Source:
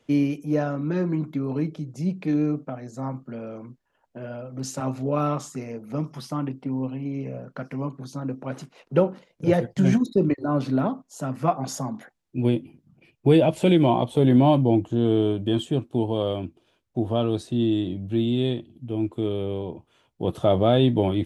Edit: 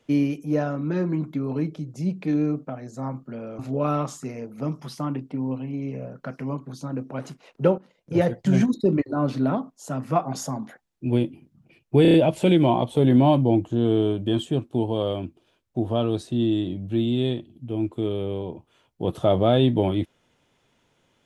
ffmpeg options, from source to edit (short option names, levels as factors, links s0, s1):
-filter_complex "[0:a]asplit=7[s0][s1][s2][s3][s4][s5][s6];[s0]atrim=end=3.592[s7];[s1]atrim=start=4.908:end=9.1,asetpts=PTS-STARTPTS,afade=t=out:st=4.188:d=0.004:c=hsin:silence=0.223872[s8];[s2]atrim=start=9.1:end=13.372,asetpts=PTS-STARTPTS,afade=t=in:d=0.45:silence=0.223872[s9];[s3]atrim=start=13.338:end=13.372[s10];[s4]atrim=start=13.338:end=13.372[s11];[s5]atrim=start=13.338:end=13.372[s12];[s6]atrim=start=13.338[s13];[s8][s9]concat=n=2:v=0:a=1[s14];[s7][s14]acrossfade=d=0.004:c1=hsin:c2=hsin[s15];[s15][s10]acrossfade=d=0.004:c1=hsin:c2=hsin[s16];[s16][s11]acrossfade=d=0.004:c1=hsin:c2=hsin[s17];[s17][s12]acrossfade=d=0.004:c1=hsin:c2=hsin[s18];[s18][s13]acrossfade=d=0.004:c1=hsin:c2=hsin"